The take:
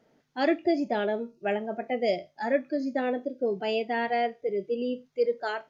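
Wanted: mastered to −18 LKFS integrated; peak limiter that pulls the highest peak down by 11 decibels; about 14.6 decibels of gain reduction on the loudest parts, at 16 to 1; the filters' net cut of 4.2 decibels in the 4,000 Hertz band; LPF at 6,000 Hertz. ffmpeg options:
ffmpeg -i in.wav -af "lowpass=6000,equalizer=frequency=4000:width_type=o:gain=-5.5,acompressor=threshold=-34dB:ratio=16,volume=26.5dB,alimiter=limit=-9.5dB:level=0:latency=1" out.wav

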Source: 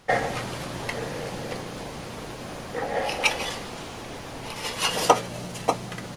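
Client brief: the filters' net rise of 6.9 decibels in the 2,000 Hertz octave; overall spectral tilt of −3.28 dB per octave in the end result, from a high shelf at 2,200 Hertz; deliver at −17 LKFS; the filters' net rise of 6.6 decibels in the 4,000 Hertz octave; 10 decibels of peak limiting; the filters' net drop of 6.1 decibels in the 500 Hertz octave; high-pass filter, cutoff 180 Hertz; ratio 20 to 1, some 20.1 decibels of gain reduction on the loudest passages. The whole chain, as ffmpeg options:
ffmpeg -i in.wav -af "highpass=180,equalizer=frequency=500:width_type=o:gain=-8,equalizer=frequency=2000:width_type=o:gain=5.5,highshelf=frequency=2200:gain=4,equalizer=frequency=4000:width_type=o:gain=3,acompressor=threshold=-31dB:ratio=20,volume=19dB,alimiter=limit=-8dB:level=0:latency=1" out.wav

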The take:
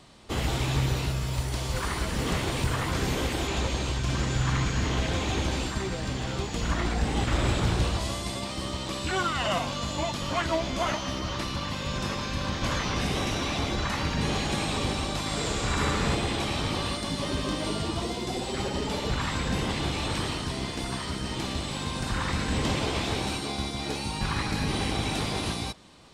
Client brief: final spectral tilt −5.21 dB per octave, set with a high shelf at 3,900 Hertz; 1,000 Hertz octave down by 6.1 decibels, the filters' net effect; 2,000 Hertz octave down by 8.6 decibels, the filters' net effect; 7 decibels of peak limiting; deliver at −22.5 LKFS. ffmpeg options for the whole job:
ffmpeg -i in.wav -af "equalizer=frequency=1000:width_type=o:gain=-5.5,equalizer=frequency=2000:width_type=o:gain=-8.5,highshelf=frequency=3900:gain=-4,volume=11.5dB,alimiter=limit=-12.5dB:level=0:latency=1" out.wav

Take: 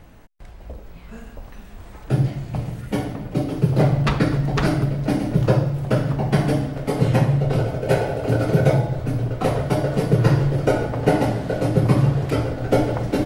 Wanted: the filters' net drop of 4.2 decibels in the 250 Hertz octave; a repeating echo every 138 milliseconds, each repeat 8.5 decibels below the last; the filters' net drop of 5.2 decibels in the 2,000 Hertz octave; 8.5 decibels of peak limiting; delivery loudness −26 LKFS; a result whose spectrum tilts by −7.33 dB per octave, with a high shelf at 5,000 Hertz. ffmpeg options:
ffmpeg -i in.wav -af "equalizer=frequency=250:width_type=o:gain=-7,equalizer=frequency=2000:width_type=o:gain=-6,highshelf=frequency=5000:gain=-7.5,alimiter=limit=-14dB:level=0:latency=1,aecho=1:1:138|276|414|552:0.376|0.143|0.0543|0.0206,volume=-1.5dB" out.wav

